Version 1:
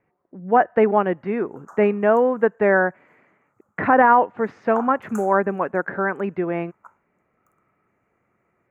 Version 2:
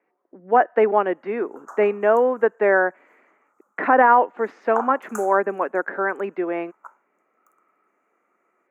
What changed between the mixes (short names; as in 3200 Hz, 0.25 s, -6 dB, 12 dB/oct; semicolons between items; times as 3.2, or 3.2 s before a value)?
background +4.5 dB; master: add HPF 270 Hz 24 dB/oct